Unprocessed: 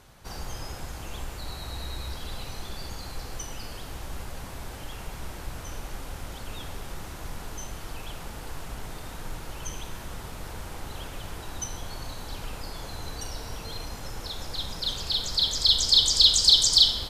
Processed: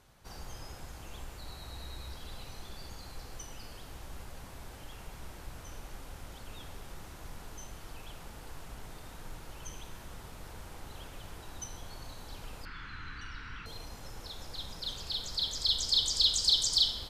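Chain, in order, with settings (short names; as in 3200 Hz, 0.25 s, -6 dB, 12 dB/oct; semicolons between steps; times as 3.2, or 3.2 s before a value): 12.65–13.66 EQ curve 280 Hz 0 dB, 660 Hz -19 dB, 1400 Hz +13 dB, 2800 Hz +6 dB, 12000 Hz -28 dB; gain -8.5 dB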